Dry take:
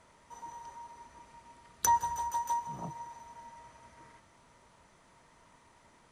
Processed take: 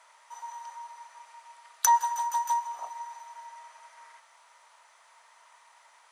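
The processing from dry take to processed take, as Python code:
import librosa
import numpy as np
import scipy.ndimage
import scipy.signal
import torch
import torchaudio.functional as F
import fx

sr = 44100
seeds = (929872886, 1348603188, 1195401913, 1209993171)

y = scipy.signal.sosfilt(scipy.signal.butter(4, 740.0, 'highpass', fs=sr, output='sos'), x)
y = y * librosa.db_to_amplitude(5.5)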